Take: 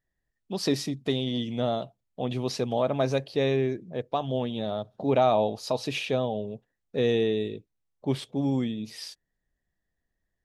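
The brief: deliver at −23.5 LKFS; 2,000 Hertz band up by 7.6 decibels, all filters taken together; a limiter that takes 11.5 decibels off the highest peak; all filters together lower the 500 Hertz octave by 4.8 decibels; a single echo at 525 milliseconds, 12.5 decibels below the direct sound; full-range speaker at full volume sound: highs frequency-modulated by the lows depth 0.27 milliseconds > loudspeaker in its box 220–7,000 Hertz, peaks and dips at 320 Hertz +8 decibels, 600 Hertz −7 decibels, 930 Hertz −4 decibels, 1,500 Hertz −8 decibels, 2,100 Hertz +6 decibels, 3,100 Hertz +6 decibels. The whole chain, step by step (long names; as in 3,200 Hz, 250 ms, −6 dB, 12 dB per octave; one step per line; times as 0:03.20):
parametric band 500 Hz −4.5 dB
parametric band 2,000 Hz +6.5 dB
brickwall limiter −22 dBFS
single-tap delay 525 ms −12.5 dB
highs frequency-modulated by the lows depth 0.27 ms
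loudspeaker in its box 220–7,000 Hz, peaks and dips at 320 Hz +8 dB, 600 Hz −7 dB, 930 Hz −4 dB, 1,500 Hz −8 dB, 2,100 Hz +6 dB, 3,100 Hz +6 dB
level +10 dB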